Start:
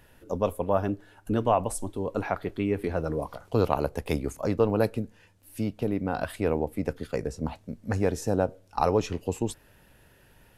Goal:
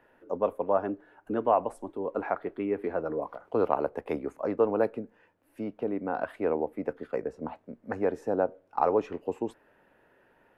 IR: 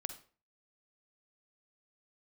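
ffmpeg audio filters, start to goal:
-filter_complex "[0:a]acrossover=split=240 2100:gain=0.1 1 0.0794[a][b][c];[a][b][c]amix=inputs=3:normalize=0"

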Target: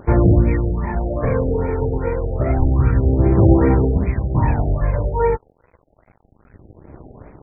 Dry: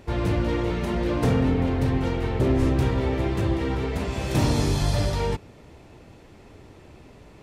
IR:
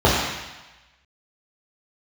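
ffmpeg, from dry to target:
-af "aphaser=in_gain=1:out_gain=1:delay=2.2:decay=0.69:speed=0.28:type=sinusoidal,aeval=exprs='sgn(val(0))*max(abs(val(0))-0.0075,0)':c=same,afftfilt=real='re*lt(b*sr/1024,790*pow(2600/790,0.5+0.5*sin(2*PI*2.5*pts/sr)))':imag='im*lt(b*sr/1024,790*pow(2600/790,0.5+0.5*sin(2*PI*2.5*pts/sr)))':win_size=1024:overlap=0.75,volume=2.5dB"

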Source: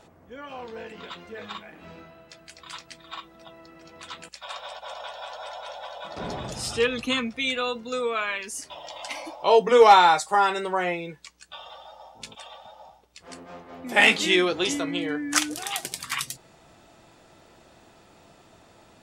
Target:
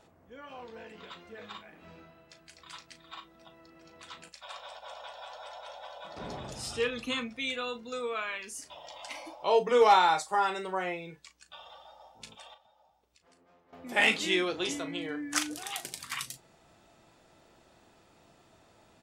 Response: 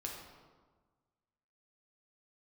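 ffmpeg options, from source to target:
-filter_complex "[0:a]asettb=1/sr,asplit=3[a][b][c];[a]atrim=end=12.544[d];[b]atrim=start=12.54:end=13.73,asetpts=PTS-STARTPTS,afade=t=in:d=0.004:c=qsin,afade=t=out:st=1.186:d=0.004:c=qsin,acompressor=threshold=-59dB:ratio=3[e];[c]atrim=start=13.726[f];[d][e]acrossfade=d=0.004:c1=hsin:c2=qsin[g];[g][f]acrossfade=d=0.004:c1=qsin:c2=hsin,asplit=2[h][i];[i]adelay=37,volume=-11dB[j];[h][j]amix=inputs=2:normalize=0,volume=-7.5dB"

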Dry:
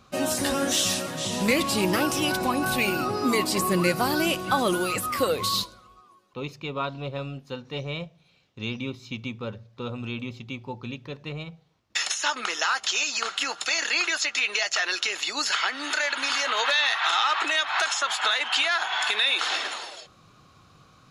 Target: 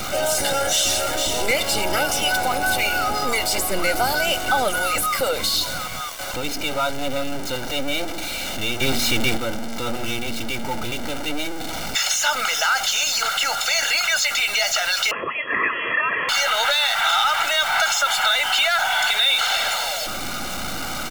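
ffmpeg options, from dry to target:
-filter_complex "[0:a]aeval=exprs='val(0)+0.5*0.0531*sgn(val(0))':c=same,aecho=1:1:1.4:0.92,asplit=2[a][b];[b]alimiter=limit=-16dB:level=0:latency=1,volume=-1.5dB[c];[a][c]amix=inputs=2:normalize=0,asplit=3[d][e][f];[d]afade=t=out:st=8.8:d=0.02[g];[e]acontrast=64,afade=t=in:st=8.8:d=0.02,afade=t=out:st=9.36:d=0.02[h];[f]afade=t=in:st=9.36:d=0.02[i];[g][h][i]amix=inputs=3:normalize=0,acrossover=split=330[j][k];[j]aeval=exprs='abs(val(0))':c=same[l];[l][k]amix=inputs=2:normalize=0,asettb=1/sr,asplit=3[m][n][o];[m]atrim=end=15.114[p];[n]atrim=start=15.11:end=16.29,asetpts=PTS-STARTPTS,afade=t=in:d=0.004:c=qsin,afade=t=out:st=1.176:d=0.004:c=qsin,lowpass=f=2.8k:t=q:w=0.5098,lowpass=f=2.8k:t=q:w=0.6013,lowpass=f=2.8k:t=q:w=0.9,lowpass=f=2.8k:t=q:w=2.563,afreqshift=-3300[q];[o]atrim=start=16.286[r];[p][q]acrossfade=d=0.004:c1=hsin:c2=qsin[s];[s][r]acrossfade=d=0.004:c1=qsin:c2=hsin,volume=-4dB"

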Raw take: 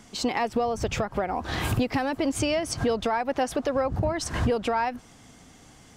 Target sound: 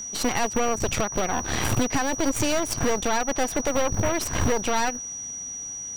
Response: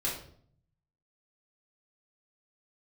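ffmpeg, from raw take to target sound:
-af "acrusher=bits=7:mode=log:mix=0:aa=0.000001,aeval=exprs='0.168*(cos(1*acos(clip(val(0)/0.168,-1,1)))-cos(1*PI/2))+0.0422*(cos(6*acos(clip(val(0)/0.168,-1,1)))-cos(6*PI/2))':c=same,aeval=exprs='val(0)+0.0251*sin(2*PI*5800*n/s)':c=same"

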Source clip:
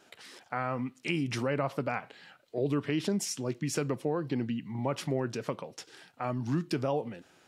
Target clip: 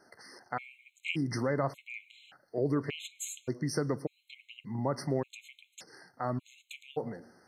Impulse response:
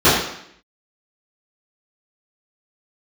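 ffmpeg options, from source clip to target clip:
-filter_complex "[0:a]asplit=2[a][b];[1:a]atrim=start_sample=2205,adelay=95[c];[b][c]afir=irnorm=-1:irlink=0,volume=-48.5dB[d];[a][d]amix=inputs=2:normalize=0,afftfilt=real='re*gt(sin(2*PI*0.86*pts/sr)*(1-2*mod(floor(b*sr/1024/2100),2)),0)':imag='im*gt(sin(2*PI*0.86*pts/sr)*(1-2*mod(floor(b*sr/1024/2100),2)),0)':win_size=1024:overlap=0.75"

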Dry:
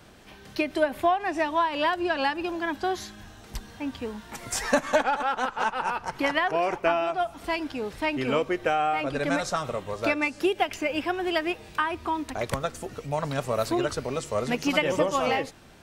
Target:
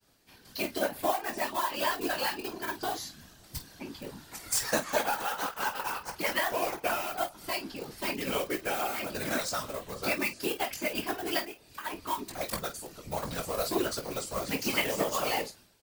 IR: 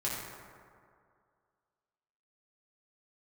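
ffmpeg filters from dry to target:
-filter_complex "[0:a]equalizer=f=4.6k:t=o:w=0.31:g=7,asplit=2[a][b];[b]acrusher=bits=3:mix=0:aa=0.000001,volume=-12dB[c];[a][c]amix=inputs=2:normalize=0,asplit=3[d][e][f];[d]afade=t=out:st=11.4:d=0.02[g];[e]acompressor=threshold=-33dB:ratio=6,afade=t=in:st=11.4:d=0.02,afade=t=out:st=11.84:d=0.02[h];[f]afade=t=in:st=11.84:d=0.02[i];[g][h][i]amix=inputs=3:normalize=0,agate=range=-33dB:threshold=-44dB:ratio=3:detection=peak,aemphasis=mode=production:type=50fm,asplit=2[j][k];[k]aecho=0:1:20|49:0.531|0.266[l];[j][l]amix=inputs=2:normalize=0,afftfilt=real='hypot(re,im)*cos(2*PI*random(0))':imag='hypot(re,im)*sin(2*PI*random(1))':win_size=512:overlap=0.75,volume=-3.5dB"

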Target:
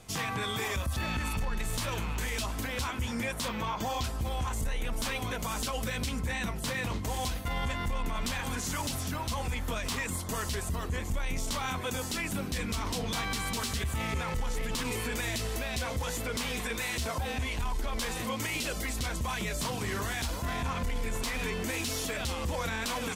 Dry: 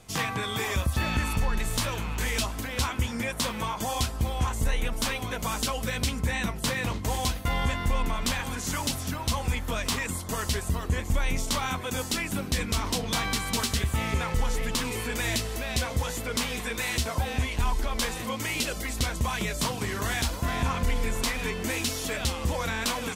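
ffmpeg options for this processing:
-filter_complex "[0:a]asettb=1/sr,asplit=3[a][b][c];[a]atrim=end=3.484[d];[b]atrim=start=3.48:end=4.04,asetpts=PTS-STARTPTS,afade=t=in:d=0.004:c=qsin,afade=t=out:st=0.556:d=0.004:c=qsin,equalizer=f=9.8k:w=1.4:g=-15[e];[c]atrim=start=4.036[f];[d][e]acrossfade=d=0.004:c1=hsin:c2=qsin[g];[g][f]acrossfade=d=0.004:c1=qsin:c2=hsin,alimiter=limit=-23dB:level=0:latency=1:release=34,asoftclip=type=tanh:threshold=-22dB"

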